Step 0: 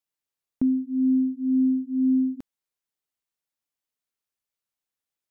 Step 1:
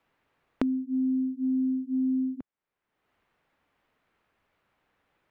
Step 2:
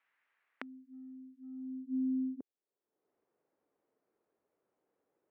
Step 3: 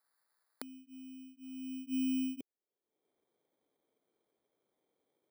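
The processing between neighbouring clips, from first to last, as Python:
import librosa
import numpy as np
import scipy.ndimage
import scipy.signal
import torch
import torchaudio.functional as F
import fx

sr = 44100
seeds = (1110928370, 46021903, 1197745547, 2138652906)

y1 = fx.band_squash(x, sr, depth_pct=100)
y1 = y1 * 10.0 ** (-5.5 / 20.0)
y2 = fx.filter_sweep_bandpass(y1, sr, from_hz=1900.0, to_hz=410.0, start_s=1.39, end_s=1.94, q=2.0)
y3 = fx.bit_reversed(y2, sr, seeds[0], block=16)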